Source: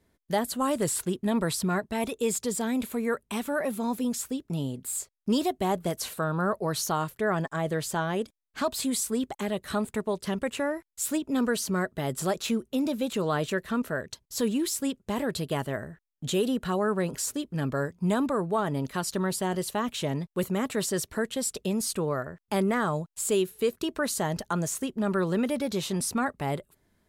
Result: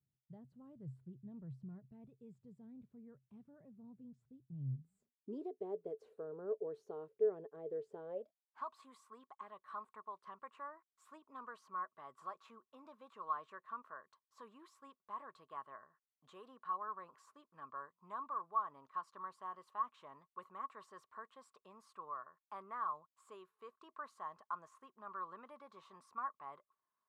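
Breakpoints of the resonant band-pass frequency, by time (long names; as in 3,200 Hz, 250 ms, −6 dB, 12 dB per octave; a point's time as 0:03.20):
resonant band-pass, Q 15
0:04.72 130 Hz
0:05.46 440 Hz
0:08.02 440 Hz
0:08.67 1,100 Hz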